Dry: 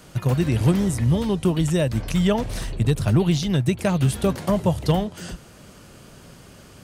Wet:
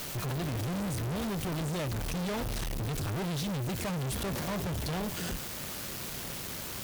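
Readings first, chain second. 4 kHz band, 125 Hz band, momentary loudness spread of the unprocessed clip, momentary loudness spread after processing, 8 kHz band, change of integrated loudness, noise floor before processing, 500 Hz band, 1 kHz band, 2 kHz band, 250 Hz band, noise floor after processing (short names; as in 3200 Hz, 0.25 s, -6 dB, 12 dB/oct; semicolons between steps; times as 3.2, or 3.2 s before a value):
-5.5 dB, -13.0 dB, 5 LU, 4 LU, -3.5 dB, -12.0 dB, -47 dBFS, -12.5 dB, -7.5 dB, -5.5 dB, -13.0 dB, -39 dBFS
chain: in parallel at +1 dB: requantised 6-bit, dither triangular; on the sum: bell 8900 Hz -3 dB 0.77 oct; tube stage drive 32 dB, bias 0.75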